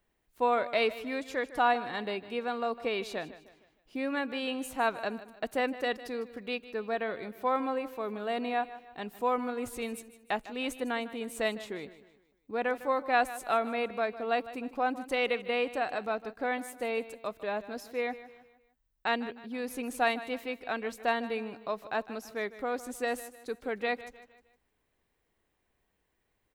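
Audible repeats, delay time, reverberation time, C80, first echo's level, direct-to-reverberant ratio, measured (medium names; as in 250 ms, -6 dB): 3, 154 ms, no reverb, no reverb, -15.5 dB, no reverb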